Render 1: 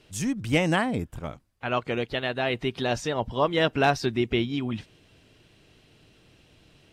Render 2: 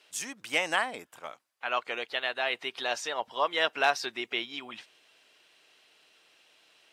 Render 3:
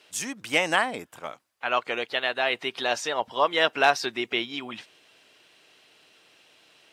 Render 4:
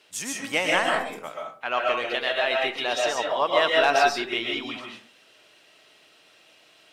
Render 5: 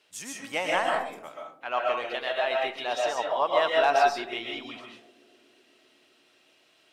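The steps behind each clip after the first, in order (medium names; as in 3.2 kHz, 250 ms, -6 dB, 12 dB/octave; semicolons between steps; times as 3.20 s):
high-pass 780 Hz 12 dB/octave
bass shelf 310 Hz +9 dB; trim +4 dB
in parallel at -11 dB: saturation -18 dBFS, distortion -10 dB; on the sum: reverberation RT60 0.45 s, pre-delay 90 ms, DRR -1 dB; trim -3.5 dB
dynamic bell 800 Hz, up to +7 dB, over -34 dBFS, Q 1.1; band-passed feedback delay 254 ms, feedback 76%, band-pass 320 Hz, level -20.5 dB; trim -7 dB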